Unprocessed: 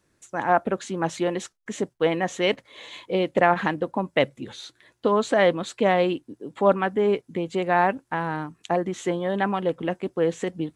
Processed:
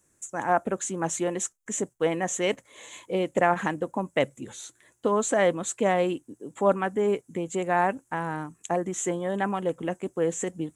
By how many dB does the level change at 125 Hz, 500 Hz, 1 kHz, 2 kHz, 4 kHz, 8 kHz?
−3.0, −3.0, −3.0, −4.0, −6.0, +9.5 decibels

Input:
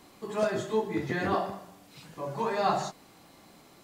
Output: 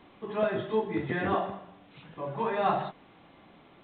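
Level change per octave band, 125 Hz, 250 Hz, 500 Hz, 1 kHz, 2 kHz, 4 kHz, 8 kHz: 0.0 dB, 0.0 dB, 0.0 dB, 0.0 dB, 0.0 dB, −3.5 dB, below −35 dB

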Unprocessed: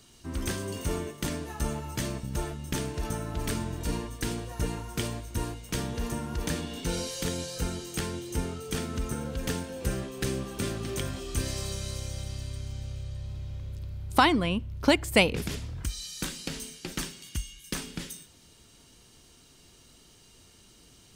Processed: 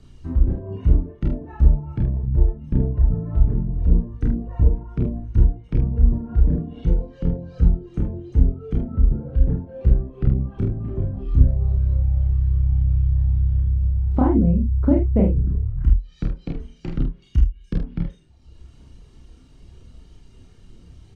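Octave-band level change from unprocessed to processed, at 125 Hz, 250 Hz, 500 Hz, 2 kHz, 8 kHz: +14.5 dB, +8.0 dB, +1.0 dB, below −15 dB, below −30 dB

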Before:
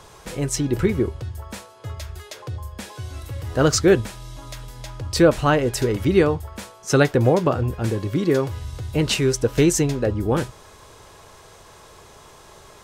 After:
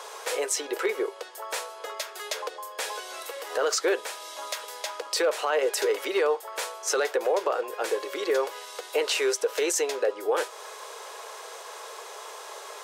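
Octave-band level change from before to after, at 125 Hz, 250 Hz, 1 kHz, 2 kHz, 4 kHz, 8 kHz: below −40 dB, −17.5 dB, −2.5 dB, −2.5 dB, −2.0 dB, −2.0 dB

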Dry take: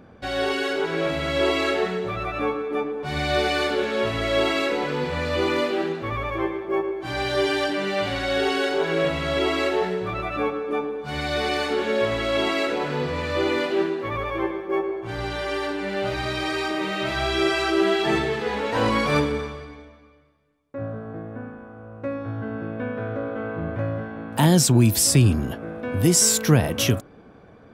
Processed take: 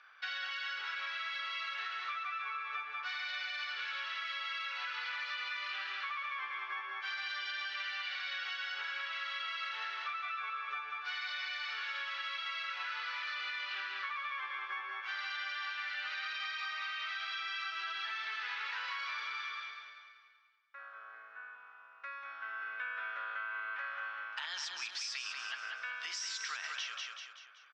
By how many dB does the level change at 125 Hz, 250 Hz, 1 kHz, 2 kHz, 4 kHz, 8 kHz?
below −40 dB, below −40 dB, −13.0 dB, −7.5 dB, −10.0 dB, below −20 dB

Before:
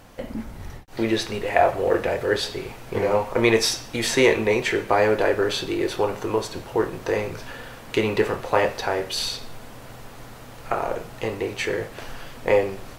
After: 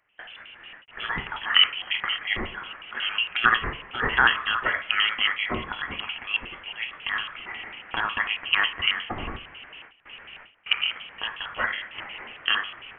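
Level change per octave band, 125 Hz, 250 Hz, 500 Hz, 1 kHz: −11.0, −15.0, −21.0, −3.0 decibels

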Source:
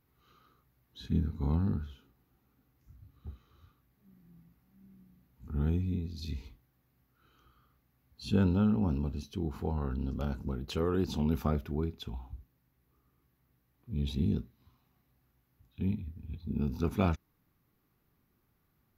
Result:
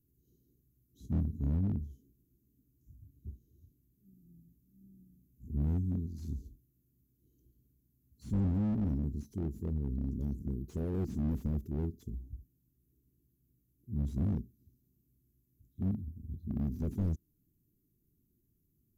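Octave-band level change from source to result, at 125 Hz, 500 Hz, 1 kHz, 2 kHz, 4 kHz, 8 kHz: −1.0 dB, −8.5 dB, −13.0 dB, below −15 dB, below −20 dB, can't be measured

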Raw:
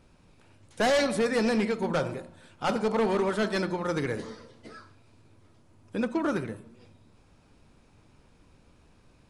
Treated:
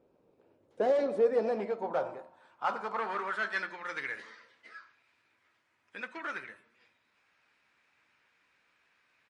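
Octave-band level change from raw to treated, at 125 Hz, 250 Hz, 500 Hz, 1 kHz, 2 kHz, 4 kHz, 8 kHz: −19.5, −14.5, −3.5, −3.0, −2.5, −13.0, −19.0 decibels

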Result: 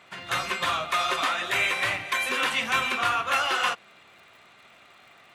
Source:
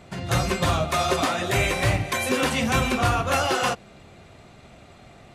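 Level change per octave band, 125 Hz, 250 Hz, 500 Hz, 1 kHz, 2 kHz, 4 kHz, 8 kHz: −20.5, −14.5, −9.5, −1.5, +1.5, +0.5, −6.0 decibels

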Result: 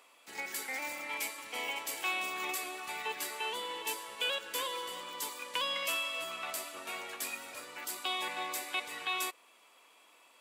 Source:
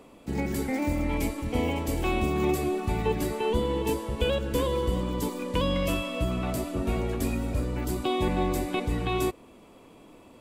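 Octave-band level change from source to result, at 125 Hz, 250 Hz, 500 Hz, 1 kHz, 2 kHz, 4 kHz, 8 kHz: below −35 dB, −25.0 dB, −16.0 dB, −5.5 dB, +1.0 dB, +1.5 dB, +1.5 dB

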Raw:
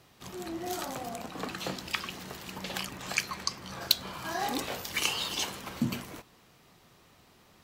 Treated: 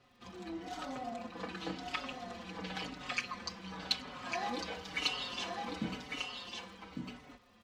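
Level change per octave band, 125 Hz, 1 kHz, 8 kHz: −6.5, −3.5, −13.0 decibels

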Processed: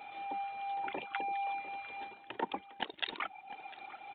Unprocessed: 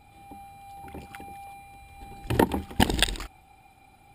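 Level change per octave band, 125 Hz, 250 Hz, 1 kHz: −31.0, −19.5, −2.0 decibels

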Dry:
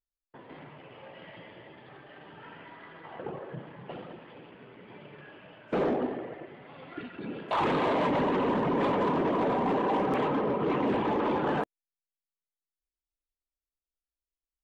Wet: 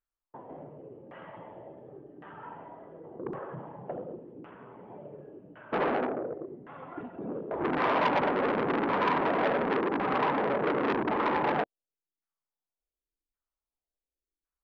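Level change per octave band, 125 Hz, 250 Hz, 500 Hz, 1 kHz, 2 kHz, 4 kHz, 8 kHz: −4.0 dB, −2.5 dB, −0.5 dB, +1.0 dB, +4.0 dB, −0.5 dB, can't be measured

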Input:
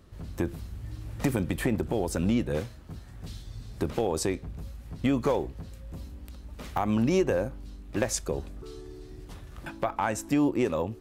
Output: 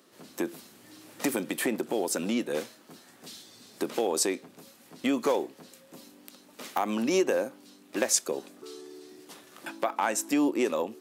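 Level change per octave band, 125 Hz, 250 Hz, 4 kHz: −16.0, −2.0, +5.0 decibels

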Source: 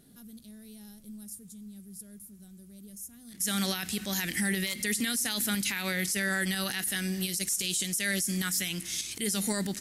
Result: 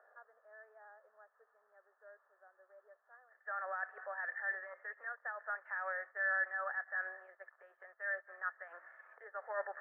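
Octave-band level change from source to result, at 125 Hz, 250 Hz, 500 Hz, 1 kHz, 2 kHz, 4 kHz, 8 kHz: below −40 dB, below −40 dB, −7.0 dB, −1.0 dB, −4.5 dB, below −40 dB, below −40 dB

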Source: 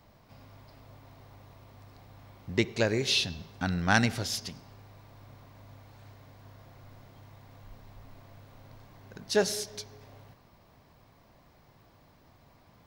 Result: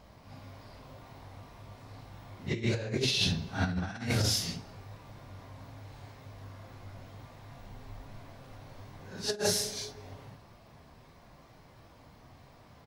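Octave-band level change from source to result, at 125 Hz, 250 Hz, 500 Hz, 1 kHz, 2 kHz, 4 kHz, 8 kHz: +1.5, −3.0, −4.5, −6.5, −6.5, 0.0, +2.0 decibels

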